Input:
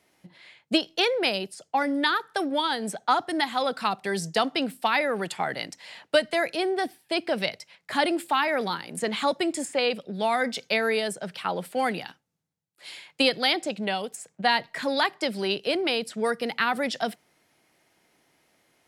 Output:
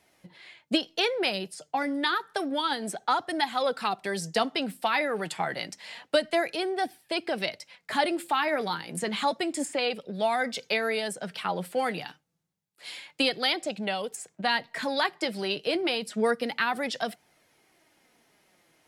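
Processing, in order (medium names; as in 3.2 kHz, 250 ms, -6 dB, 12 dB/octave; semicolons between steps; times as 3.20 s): in parallel at -1.5 dB: compression, threshold -33 dBFS, peak gain reduction 16.5 dB; on the sum: flange 0.29 Hz, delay 1.1 ms, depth 5.8 ms, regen +56%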